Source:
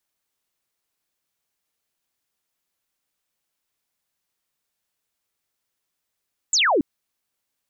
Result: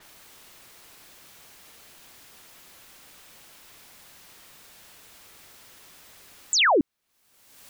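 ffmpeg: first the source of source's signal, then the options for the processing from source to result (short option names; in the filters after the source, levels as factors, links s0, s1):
-f lavfi -i "aevalsrc='0.168*clip(t/0.002,0,1)*clip((0.28-t)/0.002,0,1)*sin(2*PI*7900*0.28/log(250/7900)*(exp(log(250/7900)*t/0.28)-1))':d=0.28:s=44100"
-af "acompressor=mode=upward:threshold=0.0708:ratio=2.5,adynamicequalizer=threshold=0.00178:dfrequency=4700:dqfactor=0.7:tfrequency=4700:tqfactor=0.7:attack=5:release=100:ratio=0.375:range=2.5:mode=cutabove:tftype=highshelf"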